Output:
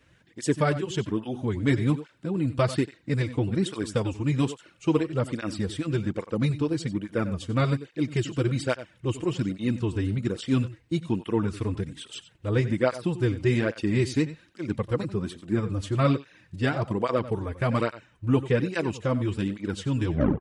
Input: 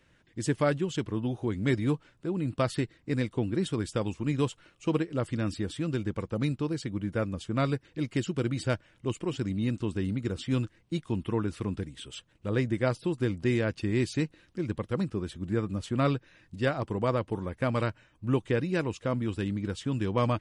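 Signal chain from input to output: tape stop at the end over 0.34 s; echo 92 ms -14.5 dB; tape flanging out of phase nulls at 1.2 Hz, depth 5.8 ms; gain +6 dB

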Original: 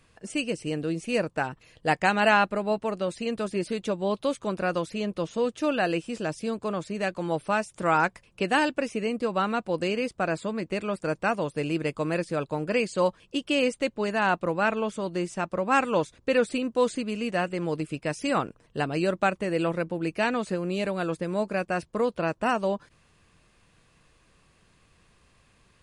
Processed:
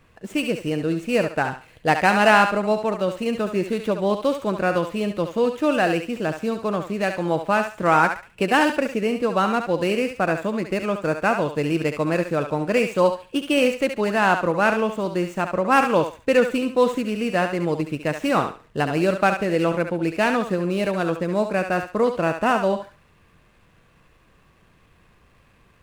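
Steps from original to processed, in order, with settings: median filter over 9 samples; thinning echo 70 ms, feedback 29%, high-pass 670 Hz, level -6 dB; gain +5.5 dB

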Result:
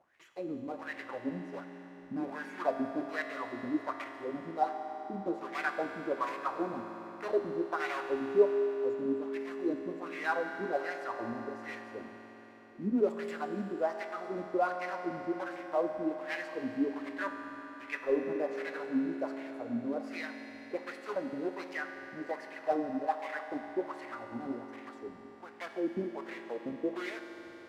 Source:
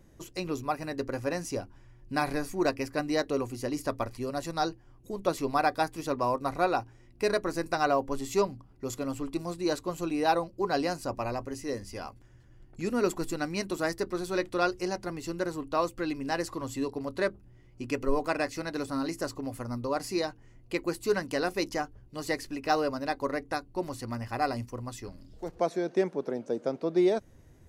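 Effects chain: block floating point 3-bit; wah 1.3 Hz 210–2100 Hz, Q 4.7; on a send: reverb RT60 4.6 s, pre-delay 4 ms, DRR 4.5 dB; on the sum: gain +4 dB

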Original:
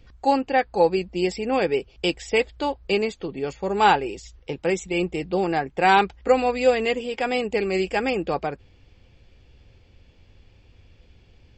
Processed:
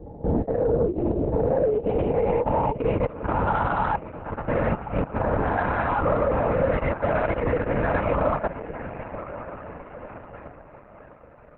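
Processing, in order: spectral swells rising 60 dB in 2.00 s; LPF 2900 Hz 12 dB/oct; low shelf 130 Hz -6.5 dB; diffused feedback echo 0.499 s, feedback 65%, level -15 dB; in parallel at 0 dB: compressor 16:1, threshold -29 dBFS, peak gain reduction 20 dB; on the sum: low-pass sweep 370 Hz -> 1300 Hz, 0.89–3.08; level quantiser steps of 19 dB; on a send: diffused feedback echo 1.039 s, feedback 42%, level -11.5 dB; on the sum: LPC vocoder at 8 kHz whisper; notch comb 380 Hz; soft clip -11 dBFS, distortion -23 dB; Opus 8 kbps 48000 Hz

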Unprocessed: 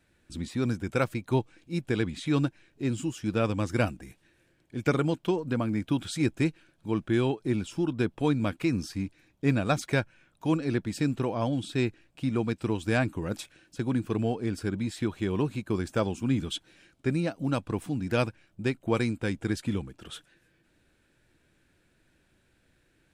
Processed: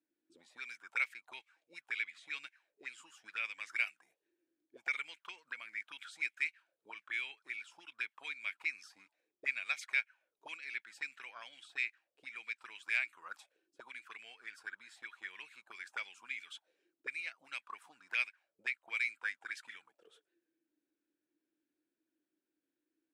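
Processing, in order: auto-wah 300–2200 Hz, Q 7.5, up, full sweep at -24 dBFS; differentiator; gain +17.5 dB

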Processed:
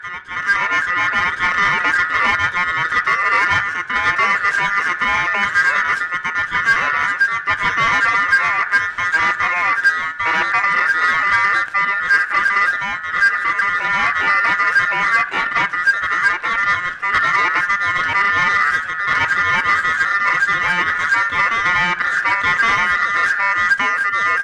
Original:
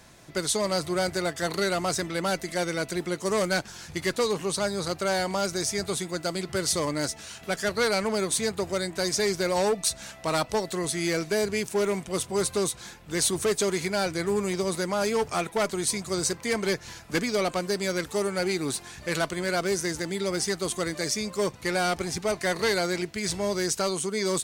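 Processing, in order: tracing distortion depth 0.044 ms; LPF 5200 Hz 12 dB/oct; tilt -3.5 dB/oct; expander -30 dBFS; ring modulator 1600 Hz; reverse echo 1.116 s -3 dB; reverb RT60 0.85 s, pre-delay 6 ms, DRR 14 dB; AGC gain up to 10.5 dB; added harmonics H 5 -22 dB, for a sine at -0.5 dBFS; gain -2.5 dB

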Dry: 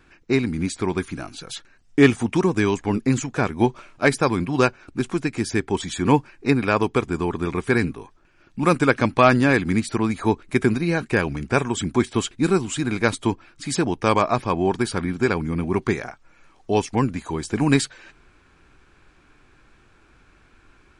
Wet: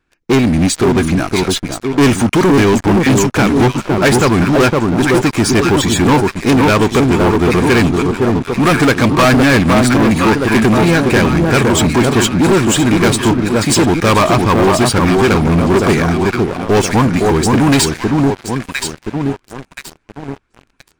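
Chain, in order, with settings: echo with dull and thin repeats by turns 0.512 s, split 1200 Hz, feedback 61%, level -5.5 dB; sample leveller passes 5; gain -2.5 dB

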